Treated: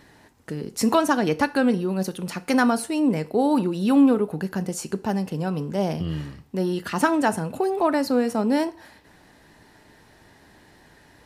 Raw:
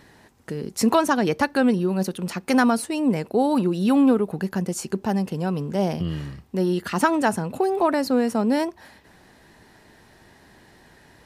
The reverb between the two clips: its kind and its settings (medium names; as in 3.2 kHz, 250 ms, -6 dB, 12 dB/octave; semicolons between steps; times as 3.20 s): FDN reverb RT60 0.42 s, low-frequency decay 0.85×, high-frequency decay 0.95×, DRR 12 dB; trim -1 dB